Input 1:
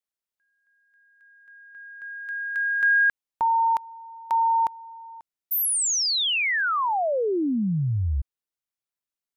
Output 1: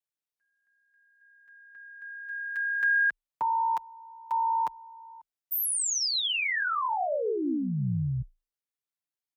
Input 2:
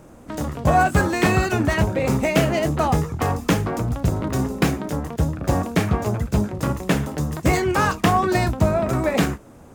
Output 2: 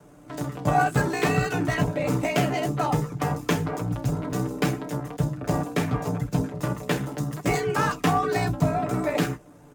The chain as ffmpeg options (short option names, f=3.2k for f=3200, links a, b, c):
-af "aeval=exprs='val(0)*sin(2*PI*31*n/s)':c=same,afreqshift=27,aecho=1:1:6.8:0.82,volume=-4dB"